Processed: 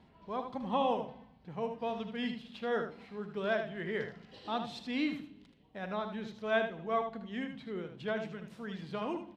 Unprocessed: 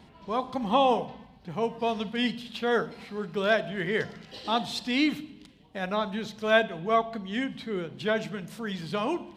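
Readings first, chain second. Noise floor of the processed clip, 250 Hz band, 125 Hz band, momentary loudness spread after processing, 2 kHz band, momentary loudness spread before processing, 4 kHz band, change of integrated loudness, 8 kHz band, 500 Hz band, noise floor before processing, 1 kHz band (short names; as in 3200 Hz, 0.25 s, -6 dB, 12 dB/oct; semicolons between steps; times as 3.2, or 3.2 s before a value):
-61 dBFS, -7.5 dB, -7.5 dB, 12 LU, -9.0 dB, 13 LU, -11.5 dB, -8.0 dB, under -15 dB, -7.5 dB, -54 dBFS, -8.0 dB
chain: LPF 2600 Hz 6 dB/oct; on a send: echo 77 ms -8 dB; on the sum: gain -8 dB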